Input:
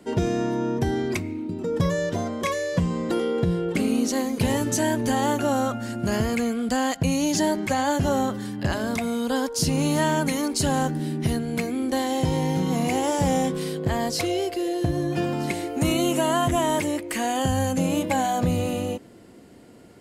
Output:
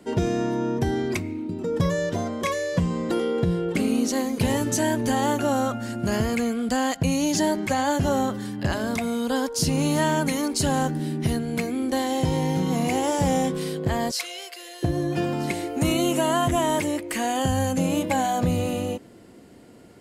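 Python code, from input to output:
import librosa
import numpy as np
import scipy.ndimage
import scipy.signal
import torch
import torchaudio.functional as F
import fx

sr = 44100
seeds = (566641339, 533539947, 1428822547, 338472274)

y = fx.highpass(x, sr, hz=1300.0, slope=12, at=(14.11, 14.83))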